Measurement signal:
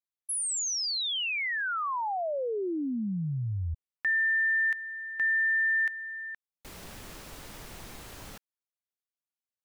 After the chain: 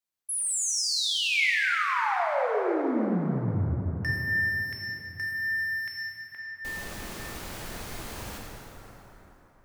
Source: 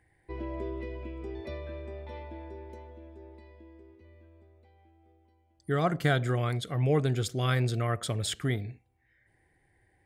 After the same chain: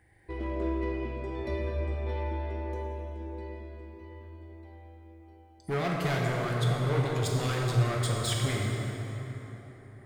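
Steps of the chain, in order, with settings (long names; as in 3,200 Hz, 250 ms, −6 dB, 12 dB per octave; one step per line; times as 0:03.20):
in parallel at −2.5 dB: downward compressor 6 to 1, threshold −41 dBFS
on the sum: hard clipping −27 dBFS
hum removal 147.8 Hz, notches 27
dynamic equaliser 2,200 Hz, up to +6 dB, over −49 dBFS, Q 4.8
dense smooth reverb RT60 4.1 s, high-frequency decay 0.55×, DRR −2.5 dB
level −1.5 dB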